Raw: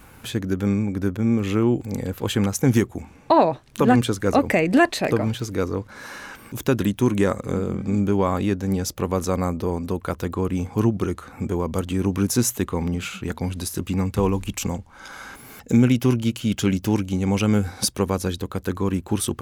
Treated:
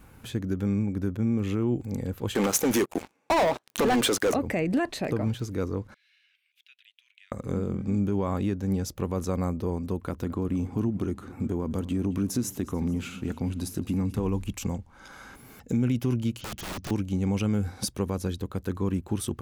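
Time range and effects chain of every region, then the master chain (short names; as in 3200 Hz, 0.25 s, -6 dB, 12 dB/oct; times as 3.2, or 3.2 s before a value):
2.35–4.34 HPF 440 Hz + sample leveller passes 5
5.94–7.32 steep high-pass 2500 Hz + air absorption 450 m
9.99–14.26 bell 260 Hz +6 dB 0.78 oct + compressor 2.5:1, threshold -20 dBFS + feedback echo 0.219 s, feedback 53%, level -18.5 dB
16.41–16.91 steep low-pass 6700 Hz 96 dB/oct + wrapped overs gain 23.5 dB
whole clip: low shelf 430 Hz +6.5 dB; limiter -8.5 dBFS; gain -9 dB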